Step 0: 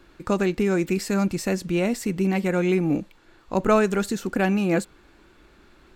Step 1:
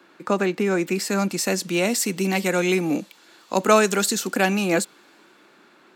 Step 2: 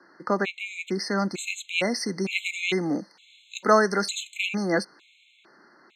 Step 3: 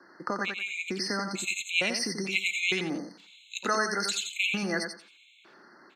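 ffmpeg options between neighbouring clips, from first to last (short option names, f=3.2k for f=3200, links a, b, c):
-filter_complex "[0:a]equalizer=f=990:w=0.38:g=4,acrossover=split=440|3500[a][b][c];[a]highpass=f=180:w=0.5412,highpass=f=180:w=1.3066[d];[c]dynaudnorm=f=220:g=13:m=13.5dB[e];[d][b][e]amix=inputs=3:normalize=0"
-af "lowpass=3.9k,highshelf=f=2k:g=10,afftfilt=real='re*gt(sin(2*PI*1.1*pts/sr)*(1-2*mod(floor(b*sr/1024/2100),2)),0)':imag='im*gt(sin(2*PI*1.1*pts/sr)*(1-2*mod(floor(b*sr/1024/2100),2)),0)':win_size=1024:overlap=0.75,volume=-3.5dB"
-filter_complex "[0:a]acrossover=split=1600[a][b];[a]acompressor=threshold=-31dB:ratio=6[c];[c][b]amix=inputs=2:normalize=0,aecho=1:1:88|176|264:0.501|0.11|0.0243"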